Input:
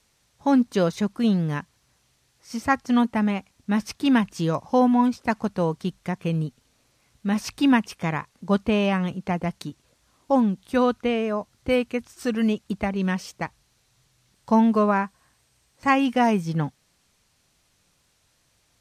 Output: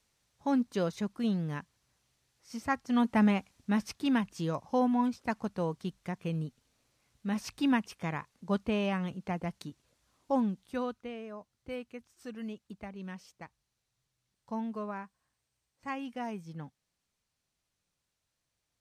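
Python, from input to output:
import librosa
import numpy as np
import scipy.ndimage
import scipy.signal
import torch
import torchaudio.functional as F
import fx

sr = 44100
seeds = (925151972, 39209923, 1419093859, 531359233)

y = fx.gain(x, sr, db=fx.line((2.89, -9.5), (3.22, -1.5), (4.11, -9.0), (10.48, -9.0), (11.09, -18.0)))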